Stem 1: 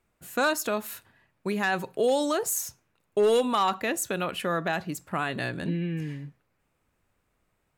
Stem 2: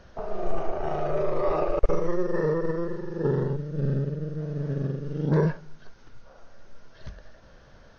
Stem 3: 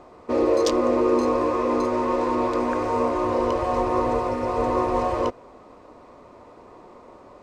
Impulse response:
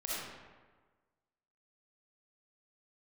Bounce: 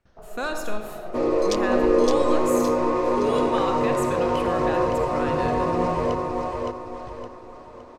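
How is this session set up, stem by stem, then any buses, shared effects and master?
−7.0 dB, 0.00 s, send −5.5 dB, echo send −23 dB, high-shelf EQ 11,000 Hz −11 dB
−6.0 dB, 0.00 s, send −10 dB, no echo send, noise gate with hold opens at −41 dBFS; automatic ducking −11 dB, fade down 0.25 s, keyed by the first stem
−2.0 dB, 0.85 s, no send, echo send −3 dB, no processing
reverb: on, RT60 1.4 s, pre-delay 20 ms
echo: repeating echo 565 ms, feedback 38%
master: no processing

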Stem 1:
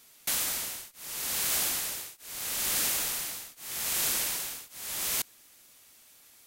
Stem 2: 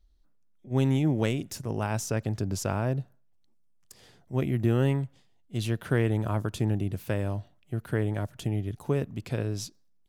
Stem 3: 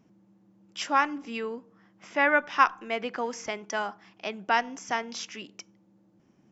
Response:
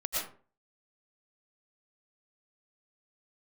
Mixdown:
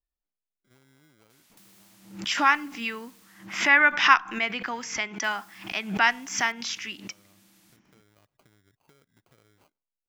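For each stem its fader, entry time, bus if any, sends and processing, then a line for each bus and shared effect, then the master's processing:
−3.0 dB, 1.30 s, muted 0:03.69–0:05.24, bus A, no send, high-shelf EQ 7,200 Hz −10 dB; wrap-around overflow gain 31.5 dB; every bin compressed towards the loudest bin 2 to 1
−17.0 dB, 0.00 s, bus A, no send, downward compressor 6 to 1, threshold −34 dBFS, peak gain reduction 13.5 dB; sample-rate reduction 1,800 Hz, jitter 0%
+2.0 dB, 1.50 s, no bus, no send, octave-band graphic EQ 125/500/2,000/4,000 Hz −6/−11/+6/+3 dB; background raised ahead of every attack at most 110 dB per second
bus A: 0.0 dB, low-shelf EQ 330 Hz −11.5 dB; downward compressor 6 to 1, threshold −55 dBFS, peak gain reduction 9 dB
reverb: not used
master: no processing

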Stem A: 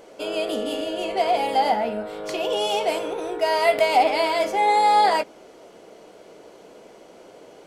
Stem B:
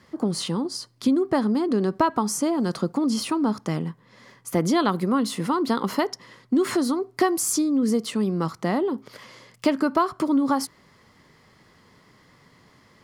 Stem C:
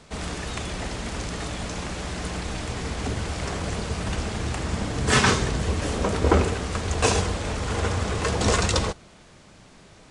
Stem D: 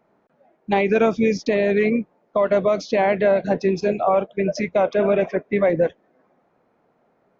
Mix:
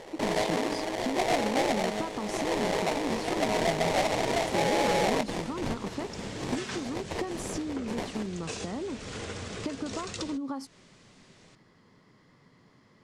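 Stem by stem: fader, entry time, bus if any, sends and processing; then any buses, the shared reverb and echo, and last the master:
+2.0 dB, 0.00 s, bus B, no send, automatic ducking −7 dB, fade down 0.90 s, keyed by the second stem
−8.0 dB, 0.00 s, bus A, no send, low-shelf EQ 390 Hz +11.5 dB
−3.5 dB, 1.45 s, bus A, no send, parametric band 950 Hz −8.5 dB 1.6 octaves
−5.0 dB, 2.35 s, bus B, no send, lower of the sound and its delayed copy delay 8.9 ms; gate on every frequency bin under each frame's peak −20 dB weak; high-pass on a step sequencer 4.6 Hz 220–2,700 Hz
bus A: 0.0 dB, low-shelf EQ 180 Hz −6.5 dB; downward compressor 5 to 1, threshold −32 dBFS, peak gain reduction 13.5 dB
bus B: 0.0 dB, sample-rate reduction 1,400 Hz, jitter 20%; brickwall limiter −20.5 dBFS, peak gain reduction 7 dB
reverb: not used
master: low-pass filter 8,200 Hz 12 dB per octave; parametric band 63 Hz −13 dB 0.69 octaves

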